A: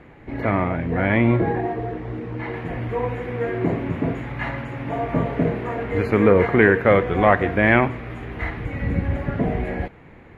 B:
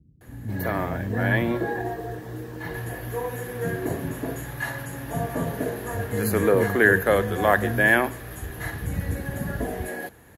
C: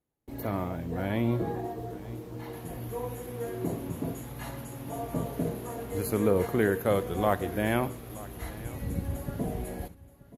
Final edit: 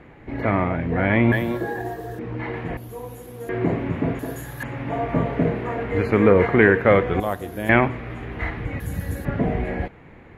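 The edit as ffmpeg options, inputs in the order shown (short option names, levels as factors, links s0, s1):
-filter_complex "[1:a]asplit=3[s0][s1][s2];[2:a]asplit=2[s3][s4];[0:a]asplit=6[s5][s6][s7][s8][s9][s10];[s5]atrim=end=1.322[s11];[s0]atrim=start=1.318:end=2.192[s12];[s6]atrim=start=2.188:end=2.772[s13];[s3]atrim=start=2.768:end=3.492[s14];[s7]atrim=start=3.488:end=4.192[s15];[s1]atrim=start=4.188:end=4.632[s16];[s8]atrim=start=4.628:end=7.202[s17];[s4]atrim=start=7.198:end=7.692[s18];[s9]atrim=start=7.688:end=8.802[s19];[s2]atrim=start=8.798:end=9.252[s20];[s10]atrim=start=9.248[s21];[s11][s12]acrossfade=d=0.004:c1=hsin:c2=hsin[s22];[s22][s13]acrossfade=d=0.004:c1=hsin:c2=hsin[s23];[s23][s14]acrossfade=d=0.004:c1=hsin:c2=hsin[s24];[s24][s15]acrossfade=d=0.004:c1=hsin:c2=hsin[s25];[s25][s16]acrossfade=d=0.004:c1=hsin:c2=hsin[s26];[s26][s17]acrossfade=d=0.004:c1=hsin:c2=hsin[s27];[s27][s18]acrossfade=d=0.004:c1=hsin:c2=hsin[s28];[s28][s19]acrossfade=d=0.004:c1=hsin:c2=hsin[s29];[s29][s20]acrossfade=d=0.004:c1=hsin:c2=hsin[s30];[s30][s21]acrossfade=d=0.004:c1=hsin:c2=hsin"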